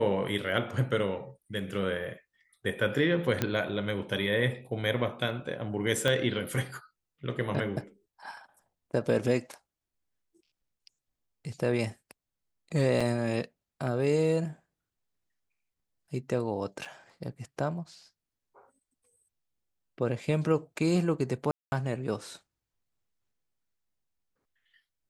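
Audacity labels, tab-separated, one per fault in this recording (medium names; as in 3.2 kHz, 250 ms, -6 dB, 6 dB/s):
3.420000	3.420000	pop -12 dBFS
6.080000	6.080000	pop -14 dBFS
13.000000	13.010000	dropout 5.3 ms
16.850000	16.850000	dropout 3.8 ms
21.510000	21.720000	dropout 211 ms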